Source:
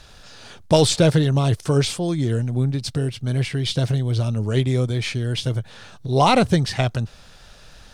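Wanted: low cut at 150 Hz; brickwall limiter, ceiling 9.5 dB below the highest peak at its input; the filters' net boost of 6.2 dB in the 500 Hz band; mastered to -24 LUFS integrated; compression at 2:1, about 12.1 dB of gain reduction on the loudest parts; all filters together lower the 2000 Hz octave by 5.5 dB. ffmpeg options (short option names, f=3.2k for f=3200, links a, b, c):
-af "highpass=150,equalizer=f=500:t=o:g=8,equalizer=f=2k:t=o:g=-8,acompressor=threshold=-29dB:ratio=2,volume=6.5dB,alimiter=limit=-13.5dB:level=0:latency=1"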